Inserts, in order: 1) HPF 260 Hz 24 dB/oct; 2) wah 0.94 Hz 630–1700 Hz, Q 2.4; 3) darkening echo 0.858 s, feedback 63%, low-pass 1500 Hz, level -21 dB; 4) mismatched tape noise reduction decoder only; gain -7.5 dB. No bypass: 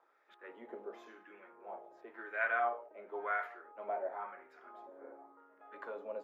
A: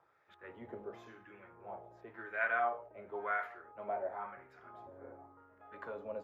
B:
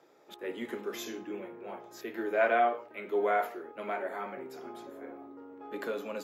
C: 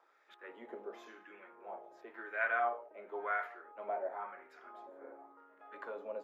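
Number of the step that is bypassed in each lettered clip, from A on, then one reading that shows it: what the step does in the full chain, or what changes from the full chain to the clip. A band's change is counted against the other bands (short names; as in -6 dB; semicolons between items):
1, 250 Hz band +2.5 dB; 2, 250 Hz band +10.0 dB; 4, momentary loudness spread change -1 LU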